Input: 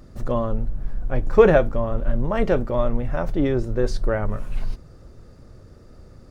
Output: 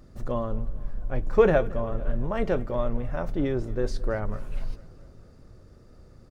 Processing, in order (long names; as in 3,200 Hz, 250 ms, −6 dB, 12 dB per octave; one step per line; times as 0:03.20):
repeating echo 223 ms, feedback 60%, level −21.5 dB
on a send at −24 dB: convolution reverb RT60 3.6 s, pre-delay 3 ms
on the sum: level −5.5 dB